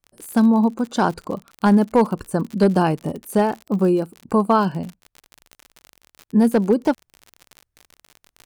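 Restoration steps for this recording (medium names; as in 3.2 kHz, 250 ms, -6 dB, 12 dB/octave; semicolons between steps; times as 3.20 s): clip repair -7.5 dBFS; de-click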